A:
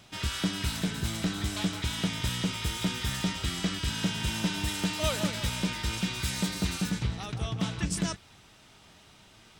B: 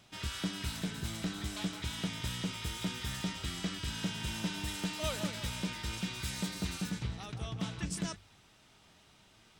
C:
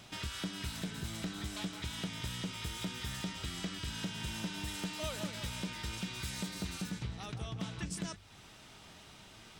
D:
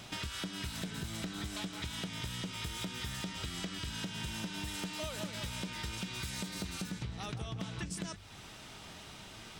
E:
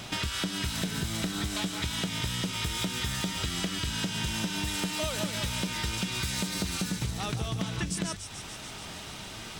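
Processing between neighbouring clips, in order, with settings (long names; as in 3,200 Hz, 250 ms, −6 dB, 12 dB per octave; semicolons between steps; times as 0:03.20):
mains-hum notches 50/100 Hz; level −6.5 dB
downward compressor 2 to 1, threshold −52 dBFS, peak gain reduction 12 dB; level +7.5 dB
downward compressor, threshold −41 dBFS, peak gain reduction 8 dB; level +5 dB
delay with a high-pass on its return 145 ms, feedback 75%, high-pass 4,700 Hz, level −6 dB; level +8 dB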